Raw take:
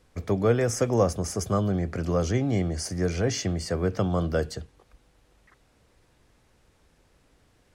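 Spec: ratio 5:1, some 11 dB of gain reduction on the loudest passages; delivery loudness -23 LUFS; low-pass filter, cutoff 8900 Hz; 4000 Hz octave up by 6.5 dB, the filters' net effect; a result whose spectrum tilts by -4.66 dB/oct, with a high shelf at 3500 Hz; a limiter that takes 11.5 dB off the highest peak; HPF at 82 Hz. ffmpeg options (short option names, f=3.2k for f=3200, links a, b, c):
-af "highpass=82,lowpass=8.9k,highshelf=f=3.5k:g=5.5,equalizer=f=4k:t=o:g=4.5,acompressor=threshold=-29dB:ratio=5,volume=14.5dB,alimiter=limit=-15dB:level=0:latency=1"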